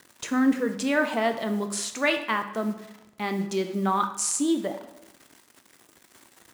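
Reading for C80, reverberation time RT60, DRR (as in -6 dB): 12.0 dB, 0.95 s, 6.5 dB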